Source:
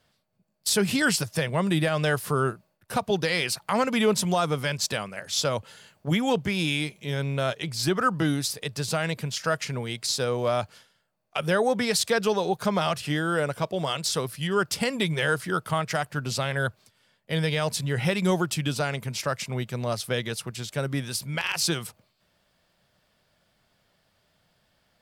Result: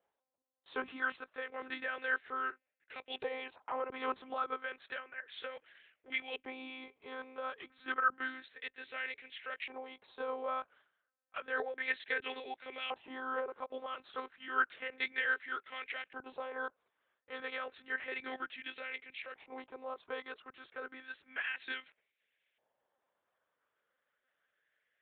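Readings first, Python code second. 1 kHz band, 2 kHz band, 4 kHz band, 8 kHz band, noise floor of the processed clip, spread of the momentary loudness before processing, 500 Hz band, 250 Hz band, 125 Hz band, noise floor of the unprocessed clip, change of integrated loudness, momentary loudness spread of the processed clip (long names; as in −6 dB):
−10.5 dB, −7.0 dB, −18.0 dB, below −40 dB, below −85 dBFS, 7 LU, −16.5 dB, −23.5 dB, below −40 dB, −70 dBFS, −13.5 dB, 12 LU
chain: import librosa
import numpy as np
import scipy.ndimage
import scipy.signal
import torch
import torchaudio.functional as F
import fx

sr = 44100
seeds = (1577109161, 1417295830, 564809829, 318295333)

y = fx.graphic_eq_15(x, sr, hz=(100, 400, 1000), db=(-8, 11, -8))
y = fx.lpc_monotone(y, sr, seeds[0], pitch_hz=260.0, order=10)
y = fx.filter_lfo_bandpass(y, sr, shape='saw_up', hz=0.31, low_hz=860.0, high_hz=2400.0, q=3.0)
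y = y * 10.0 ** (-2.5 / 20.0)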